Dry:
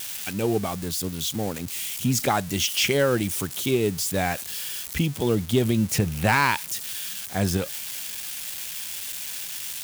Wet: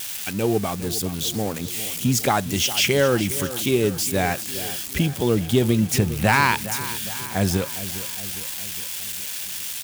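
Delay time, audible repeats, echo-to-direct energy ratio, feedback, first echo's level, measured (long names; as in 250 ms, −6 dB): 409 ms, 5, −12.5 dB, 57%, −14.0 dB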